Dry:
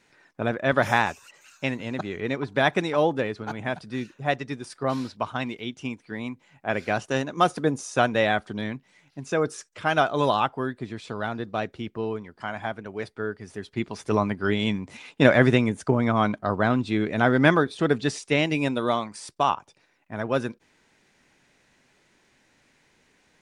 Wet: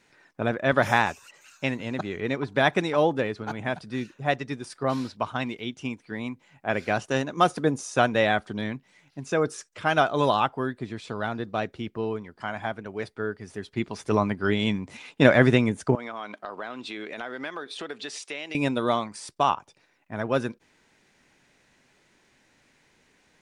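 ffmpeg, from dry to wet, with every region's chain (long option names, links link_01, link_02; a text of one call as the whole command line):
ffmpeg -i in.wav -filter_complex "[0:a]asettb=1/sr,asplit=3[link_01][link_02][link_03];[link_01]atrim=end=15.954[link_04];[link_02]atrim=start=15.95:end=18.55,asetpts=PTS-STARTPTS,afade=type=in:duration=0.004:curve=qsin,afade=type=out:start_time=2.596:duration=0.004:curve=qsin,highpass=390,equalizer=frequency=3000:width=0.86:gain=5,acompressor=threshold=-33dB:ratio=4:attack=3.2:release=140:knee=1:detection=peak[link_05];[link_03]atrim=start=18.546[link_06];[link_04][link_05]acrossfade=duration=0.004:curve1=hsin:curve2=qsin[link_07];[link_07][link_06]acrossfade=duration=0.004:curve1=qsin:curve2=hsin" out.wav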